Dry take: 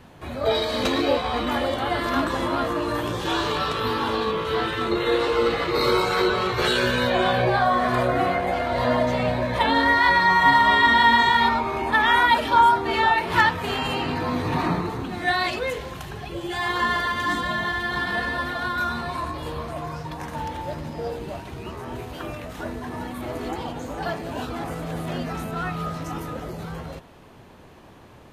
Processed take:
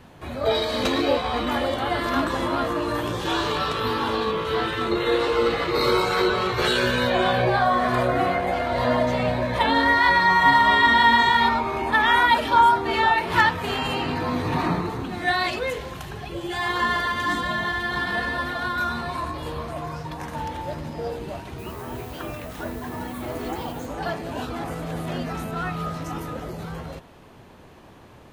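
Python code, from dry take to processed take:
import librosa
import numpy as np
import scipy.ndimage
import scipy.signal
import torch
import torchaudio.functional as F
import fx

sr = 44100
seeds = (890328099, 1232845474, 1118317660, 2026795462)

y = fx.dmg_noise_colour(x, sr, seeds[0], colour='violet', level_db=-49.0, at=(21.58, 23.85), fade=0.02)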